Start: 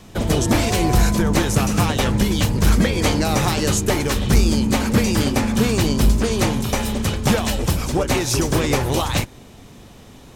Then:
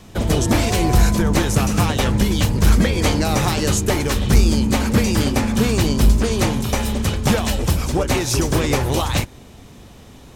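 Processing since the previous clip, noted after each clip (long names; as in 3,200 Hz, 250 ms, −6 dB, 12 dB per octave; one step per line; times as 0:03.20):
parametric band 66 Hz +4.5 dB 0.77 octaves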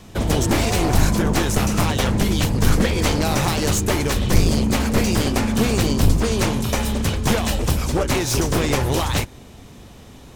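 wavefolder on the positive side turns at −16 dBFS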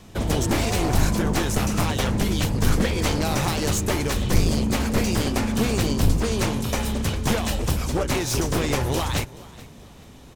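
echo with shifted repeats 428 ms, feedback 31%, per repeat +39 Hz, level −20.5 dB
level −3.5 dB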